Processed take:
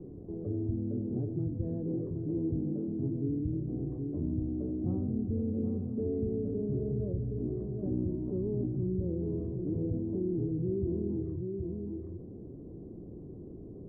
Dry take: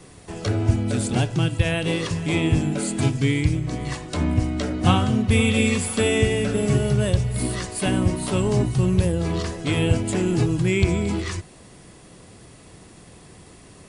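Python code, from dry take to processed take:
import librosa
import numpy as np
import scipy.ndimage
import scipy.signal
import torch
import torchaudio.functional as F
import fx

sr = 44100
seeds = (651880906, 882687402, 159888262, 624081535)

y = fx.ladder_lowpass(x, sr, hz=430.0, resonance_pct=45)
y = y + 10.0 ** (-8.5 / 20.0) * np.pad(y, (int(771 * sr / 1000.0), 0))[:len(y)]
y = fx.env_flatten(y, sr, amount_pct=50)
y = y * 10.0 ** (-8.0 / 20.0)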